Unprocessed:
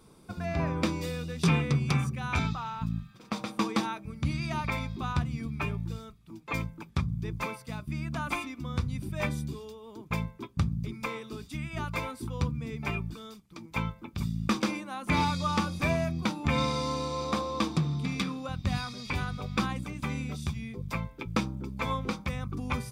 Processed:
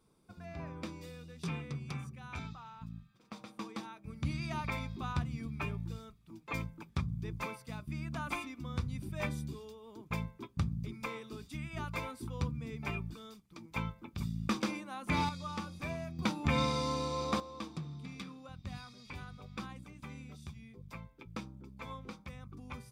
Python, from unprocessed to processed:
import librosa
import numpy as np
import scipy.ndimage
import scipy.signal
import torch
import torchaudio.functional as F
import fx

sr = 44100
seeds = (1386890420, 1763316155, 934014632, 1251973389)

y = fx.gain(x, sr, db=fx.steps((0.0, -14.0), (4.04, -5.5), (15.29, -12.0), (16.19, -3.0), (17.4, -14.0)))